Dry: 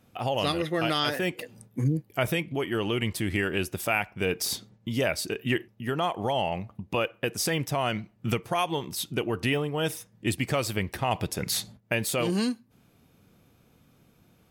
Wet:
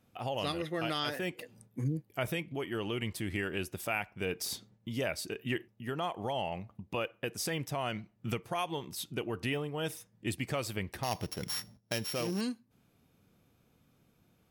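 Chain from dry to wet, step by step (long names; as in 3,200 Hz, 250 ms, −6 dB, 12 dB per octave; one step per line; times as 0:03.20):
0:11.03–0:12.41: samples sorted by size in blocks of 8 samples
level −7.5 dB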